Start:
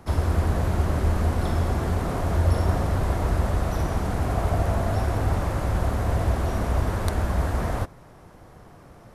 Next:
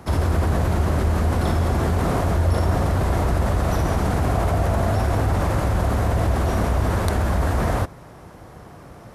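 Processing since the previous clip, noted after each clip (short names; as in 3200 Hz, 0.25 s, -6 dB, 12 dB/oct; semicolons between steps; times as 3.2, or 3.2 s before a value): HPF 41 Hz; in parallel at -2 dB: negative-ratio compressor -26 dBFS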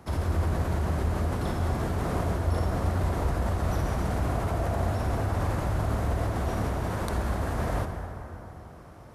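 reverb RT60 3.4 s, pre-delay 43 ms, DRR 5.5 dB; gain -8.5 dB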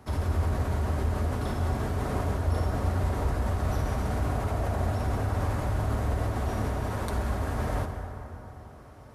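notch comb 170 Hz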